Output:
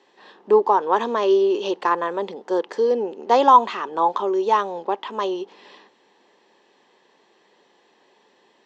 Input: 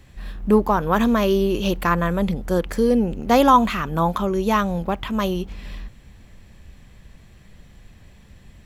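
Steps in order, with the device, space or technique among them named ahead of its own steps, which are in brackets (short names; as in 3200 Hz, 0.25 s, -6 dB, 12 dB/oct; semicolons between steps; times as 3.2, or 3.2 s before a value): air absorption 72 m; phone speaker on a table (speaker cabinet 350–6800 Hz, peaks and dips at 400 Hz +6 dB, 630 Hz -4 dB, 900 Hz +8 dB, 1400 Hz -6 dB, 2300 Hz -8 dB)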